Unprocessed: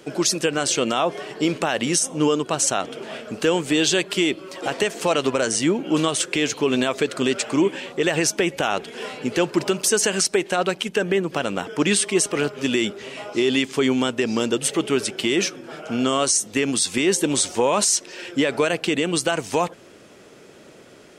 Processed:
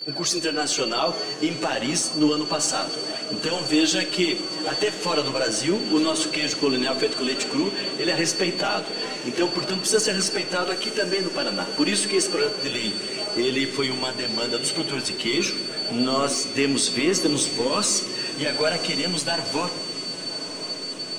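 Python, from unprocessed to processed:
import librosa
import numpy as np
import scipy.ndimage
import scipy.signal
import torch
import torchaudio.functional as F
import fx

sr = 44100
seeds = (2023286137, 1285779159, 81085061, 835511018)

p1 = scipy.signal.sosfilt(scipy.signal.butter(2, 9900.0, 'lowpass', fs=sr, output='sos'), x)
p2 = fx.low_shelf(p1, sr, hz=150.0, db=-4.5)
p3 = np.clip(p2, -10.0 ** (-25.5 / 20.0), 10.0 ** (-25.5 / 20.0))
p4 = p2 + (p3 * librosa.db_to_amplitude(-10.5))
p5 = p4 + 10.0 ** (-27.0 / 20.0) * np.sin(2.0 * np.pi * 4500.0 * np.arange(len(p4)) / sr)
p6 = fx.chorus_voices(p5, sr, voices=2, hz=0.15, base_ms=13, depth_ms=3.8, mix_pct=70)
p7 = p6 + fx.echo_diffused(p6, sr, ms=1006, feedback_pct=79, wet_db=-15, dry=0)
p8 = fx.room_shoebox(p7, sr, seeds[0], volume_m3=770.0, walls='mixed', distance_m=0.53)
y = p8 * librosa.db_to_amplitude(-1.5)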